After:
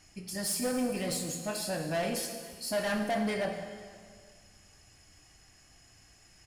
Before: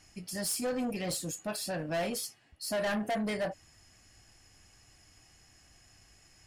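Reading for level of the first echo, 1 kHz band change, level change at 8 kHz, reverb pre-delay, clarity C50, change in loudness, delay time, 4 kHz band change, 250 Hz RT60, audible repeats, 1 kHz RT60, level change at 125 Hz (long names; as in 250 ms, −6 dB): −22.5 dB, +1.5 dB, +1.5 dB, 7 ms, 6.0 dB, +1.0 dB, 488 ms, +1.5 dB, 1.7 s, 1, 1.9 s, +1.5 dB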